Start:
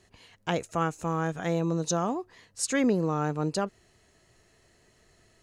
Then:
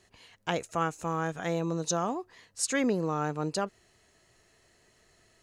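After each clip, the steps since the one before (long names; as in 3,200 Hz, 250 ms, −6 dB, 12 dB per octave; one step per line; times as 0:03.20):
low-shelf EQ 400 Hz −5 dB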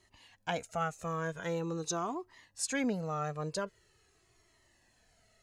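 flanger whose copies keep moving one way falling 0.44 Hz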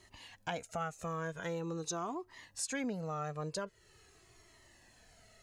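downward compressor 2 to 1, threshold −49 dBFS, peak gain reduction 11.5 dB
level +6 dB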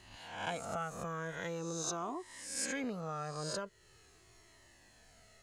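peak hold with a rise ahead of every peak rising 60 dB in 0.81 s
level −2.5 dB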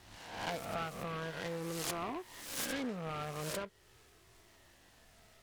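short delay modulated by noise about 1,200 Hz, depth 0.071 ms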